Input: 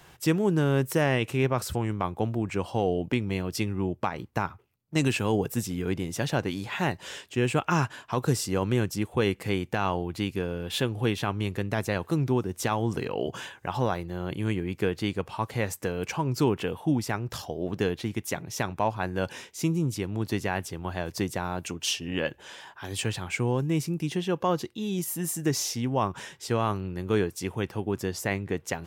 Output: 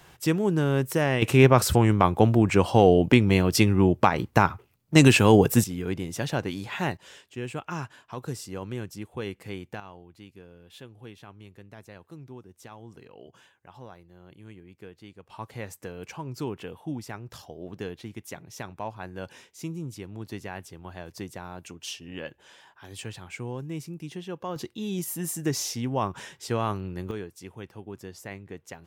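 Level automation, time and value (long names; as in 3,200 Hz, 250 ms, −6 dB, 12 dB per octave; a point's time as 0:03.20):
0 dB
from 0:01.22 +9 dB
from 0:05.64 −1 dB
from 0:06.97 −9 dB
from 0:09.80 −18.5 dB
from 0:15.30 −8.5 dB
from 0:24.56 −1 dB
from 0:27.11 −11 dB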